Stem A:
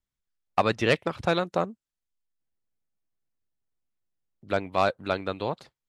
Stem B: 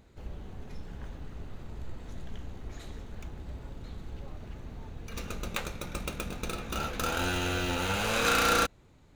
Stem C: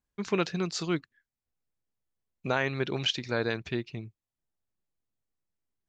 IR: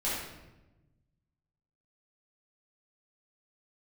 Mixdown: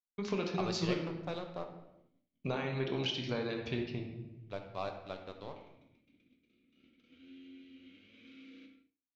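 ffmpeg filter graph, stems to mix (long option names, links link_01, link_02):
-filter_complex "[0:a]aeval=exprs='sgn(val(0))*max(abs(val(0))-0.0178,0)':channel_layout=same,volume=-16dB,asplit=2[link_01][link_02];[link_02]volume=-10.5dB[link_03];[1:a]asoftclip=type=tanh:threshold=-25.5dB,asplit=3[link_04][link_05][link_06];[link_04]bandpass=frequency=270:width_type=q:width=8,volume=0dB[link_07];[link_05]bandpass=frequency=2290:width_type=q:width=8,volume=-6dB[link_08];[link_06]bandpass=frequency=3010:width_type=q:width=8,volume=-9dB[link_09];[link_07][link_08][link_09]amix=inputs=3:normalize=0,volume=-18dB,asplit=2[link_10][link_11];[link_11]volume=-5.5dB[link_12];[2:a]bandreject=frequency=73.02:width_type=h:width=4,bandreject=frequency=146.04:width_type=h:width=4,bandreject=frequency=219.06:width_type=h:width=4,bandreject=frequency=292.08:width_type=h:width=4,bandreject=frequency=365.1:width_type=h:width=4,bandreject=frequency=438.12:width_type=h:width=4,bandreject=frequency=511.14:width_type=h:width=4,bandreject=frequency=584.16:width_type=h:width=4,bandreject=frequency=657.18:width_type=h:width=4,bandreject=frequency=730.2:width_type=h:width=4,bandreject=frequency=803.22:width_type=h:width=4,bandreject=frequency=876.24:width_type=h:width=4,bandreject=frequency=949.26:width_type=h:width=4,bandreject=frequency=1022.28:width_type=h:width=4,bandreject=frequency=1095.3:width_type=h:width=4,bandreject=frequency=1168.32:width_type=h:width=4,bandreject=frequency=1241.34:width_type=h:width=4,bandreject=frequency=1314.36:width_type=h:width=4,bandreject=frequency=1387.38:width_type=h:width=4,bandreject=frequency=1460.4:width_type=h:width=4,bandreject=frequency=1533.42:width_type=h:width=4,bandreject=frequency=1606.44:width_type=h:width=4,bandreject=frequency=1679.46:width_type=h:width=4,bandreject=frequency=1752.48:width_type=h:width=4,bandreject=frequency=1825.5:width_type=h:width=4,bandreject=frequency=1898.52:width_type=h:width=4,bandreject=frequency=1971.54:width_type=h:width=4,bandreject=frequency=2044.56:width_type=h:width=4,bandreject=frequency=2117.58:width_type=h:width=4,acompressor=threshold=-32dB:ratio=6,volume=-2.5dB,asplit=2[link_13][link_14];[link_14]volume=-7dB[link_15];[3:a]atrim=start_sample=2205[link_16];[link_03][link_12][link_15]amix=inputs=3:normalize=0[link_17];[link_17][link_16]afir=irnorm=-1:irlink=0[link_18];[link_01][link_10][link_13][link_18]amix=inputs=4:normalize=0,agate=range=-33dB:threshold=-58dB:ratio=3:detection=peak,lowpass=frequency=5700:width=0.5412,lowpass=frequency=5700:width=1.3066,equalizer=frequency=1600:width_type=o:width=0.59:gain=-6.5"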